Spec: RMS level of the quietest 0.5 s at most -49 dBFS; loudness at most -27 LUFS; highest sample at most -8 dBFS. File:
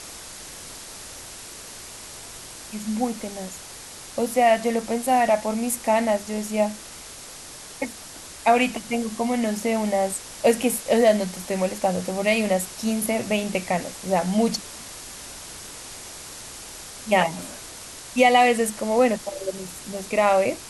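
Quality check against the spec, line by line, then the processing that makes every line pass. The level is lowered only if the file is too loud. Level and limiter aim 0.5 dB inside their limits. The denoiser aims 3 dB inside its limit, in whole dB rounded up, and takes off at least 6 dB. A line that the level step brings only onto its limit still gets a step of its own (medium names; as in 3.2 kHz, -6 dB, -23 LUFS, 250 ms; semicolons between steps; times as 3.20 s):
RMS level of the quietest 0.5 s -41 dBFS: fail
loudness -23.0 LUFS: fail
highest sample -5.0 dBFS: fail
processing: noise reduction 7 dB, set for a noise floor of -41 dBFS; trim -4.5 dB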